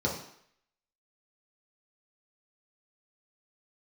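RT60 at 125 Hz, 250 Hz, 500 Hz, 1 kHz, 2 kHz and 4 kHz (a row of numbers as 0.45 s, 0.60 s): 0.50 s, 0.55 s, 0.65 s, 0.70 s, 0.70 s, 0.65 s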